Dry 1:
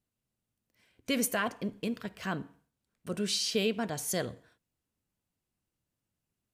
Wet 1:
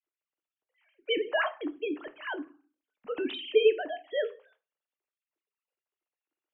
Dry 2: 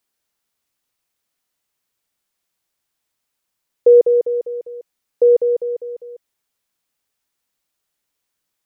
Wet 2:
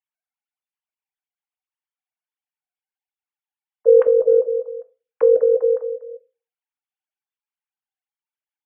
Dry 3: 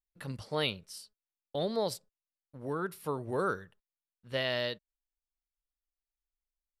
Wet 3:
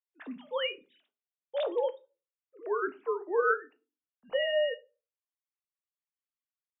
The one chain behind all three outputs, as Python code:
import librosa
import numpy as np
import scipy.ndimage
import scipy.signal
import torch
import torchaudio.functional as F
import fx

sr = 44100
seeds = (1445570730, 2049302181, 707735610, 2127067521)

p1 = fx.sine_speech(x, sr)
p2 = fx.dynamic_eq(p1, sr, hz=1500.0, q=1.3, threshold_db=-34.0, ratio=4.0, max_db=5)
p3 = fx.over_compress(p2, sr, threshold_db=-19.0, ratio=-0.5)
p4 = p2 + (p3 * librosa.db_to_amplitude(0.0))
p5 = fx.room_shoebox(p4, sr, seeds[0], volume_m3=130.0, walls='furnished', distance_m=0.46)
y = p5 * librosa.db_to_amplitude(-4.0)